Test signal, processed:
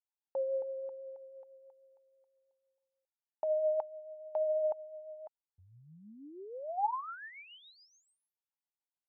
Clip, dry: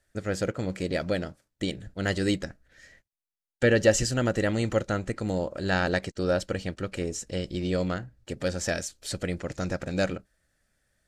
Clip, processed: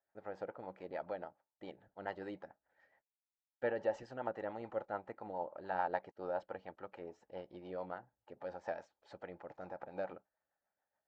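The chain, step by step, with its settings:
resonant band-pass 860 Hz, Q 7.3
rotating-speaker cabinet horn 7 Hz
high-frequency loss of the air 130 metres
level +7 dB

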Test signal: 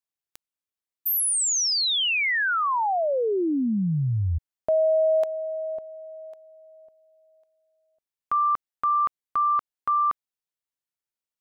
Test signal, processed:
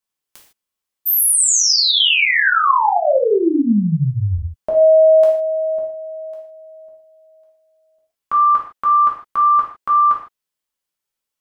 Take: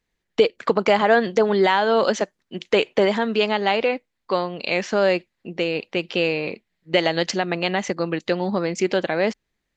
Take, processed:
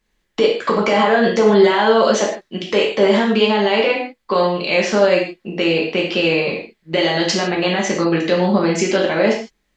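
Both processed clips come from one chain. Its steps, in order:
brickwall limiter −13 dBFS
reverb whose tail is shaped and stops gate 180 ms falling, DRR −3 dB
level +4 dB

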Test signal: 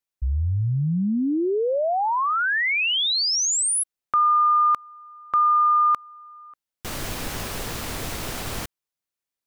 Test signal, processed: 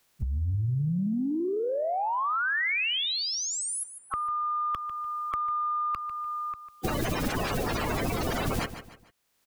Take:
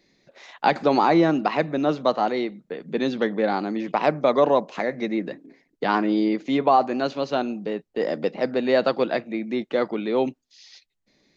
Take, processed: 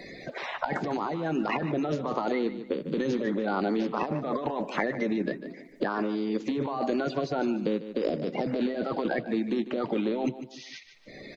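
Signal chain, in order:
spectral magnitudes quantised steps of 30 dB
high-shelf EQ 4,500 Hz −3 dB
compressor whose output falls as the input rises −27 dBFS, ratio −1
on a send: repeating echo 148 ms, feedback 24%, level −14 dB
on the sum: multiband upward and downward compressor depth 70%
level −2 dB

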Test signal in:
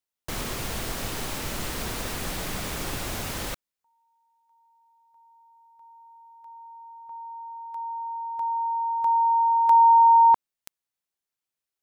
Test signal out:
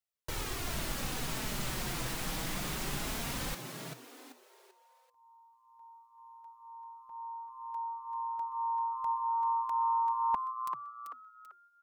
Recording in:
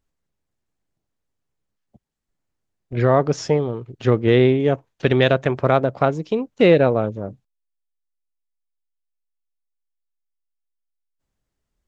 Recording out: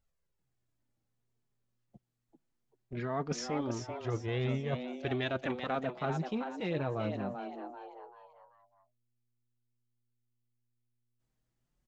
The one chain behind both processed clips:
flanger 0.22 Hz, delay 1.4 ms, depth 5.1 ms, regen −16%
reversed playback
downward compressor, threshold −26 dBFS
reversed playback
echo with shifted repeats 388 ms, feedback 35%, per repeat +120 Hz, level −7 dB
dynamic equaliser 490 Hz, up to −7 dB, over −43 dBFS, Q 1.4
level −2 dB

